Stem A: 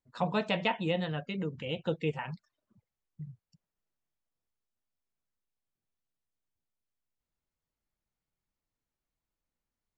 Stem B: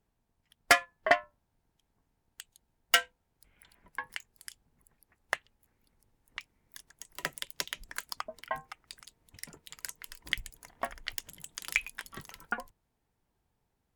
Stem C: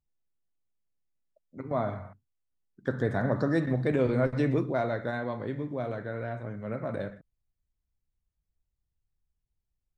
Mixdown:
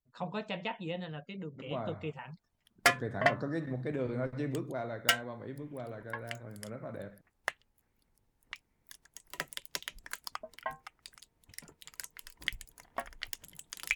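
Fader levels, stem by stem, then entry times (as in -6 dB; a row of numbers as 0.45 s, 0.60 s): -7.5 dB, -3.0 dB, -9.0 dB; 0.00 s, 2.15 s, 0.00 s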